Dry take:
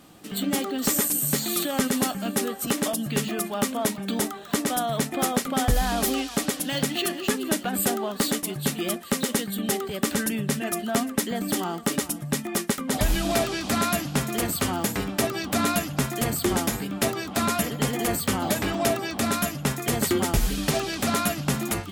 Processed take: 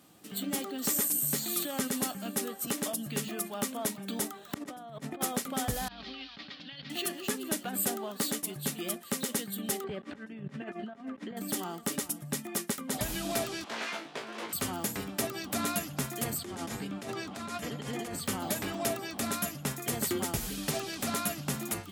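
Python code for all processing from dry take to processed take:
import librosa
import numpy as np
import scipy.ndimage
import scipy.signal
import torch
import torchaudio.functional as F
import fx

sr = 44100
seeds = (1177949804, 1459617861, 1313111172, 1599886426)

y = fx.chain(x, sr, fx.lowpass(hz=1600.0, slope=6),
    fx.over_compress(threshold_db=-32.0, ratio=-0.5), at=(4.54, 5.21))
y = fx.chain(y, sr, fx.steep_lowpass(hz=4500.0, slope=48),
    fx.peak_eq(hz=450.0, db=-13.5, octaves=2.9),
    fx.over_compress(threshold_db=-35.0, ratio=-0.5), at=(5.88, 6.9))
y = fx.chain(y, sr, fx.over_compress(threshold_db=-31.0, ratio=-0.5),
    fx.lowpass(hz=2200.0, slope=12), at=(9.84, 11.37))
y = fx.chain(y, sr, fx.self_delay(depth_ms=0.93),
    fx.bandpass_edges(low_hz=420.0, high_hz=3300.0),
    fx.room_flutter(wall_m=3.1, rt60_s=0.21), at=(13.64, 14.53))
y = fx.chain(y, sr, fx.over_compress(threshold_db=-28.0, ratio=-1.0),
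    fx.air_absorb(metres=50.0), at=(16.38, 18.26))
y = scipy.signal.sosfilt(scipy.signal.butter(2, 78.0, 'highpass', fs=sr, output='sos'), y)
y = fx.high_shelf(y, sr, hz=6300.0, db=6.0)
y = y * 10.0 ** (-9.0 / 20.0)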